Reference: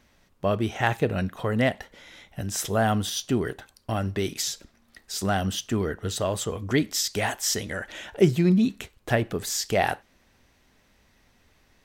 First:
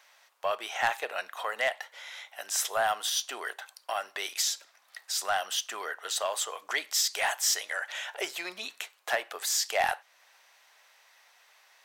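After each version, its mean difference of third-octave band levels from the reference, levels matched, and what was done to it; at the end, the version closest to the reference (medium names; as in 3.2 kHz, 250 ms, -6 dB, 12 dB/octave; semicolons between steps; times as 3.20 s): 11.5 dB: high-pass 700 Hz 24 dB/octave; in parallel at -2 dB: compression, threshold -42 dBFS, peak gain reduction 21.5 dB; on the sum: saturation -16.5 dBFS, distortion -18 dB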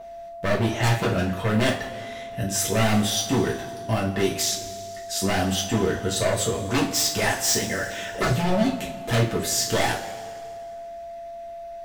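8.5 dB: wavefolder -20.5 dBFS; whistle 680 Hz -38 dBFS; two-slope reverb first 0.29 s, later 2.2 s, from -18 dB, DRR -4 dB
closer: second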